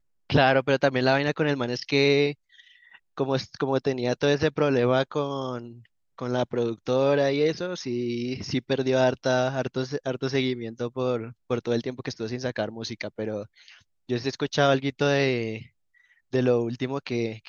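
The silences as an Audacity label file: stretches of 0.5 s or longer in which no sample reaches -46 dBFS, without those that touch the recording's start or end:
15.670000	16.330000	silence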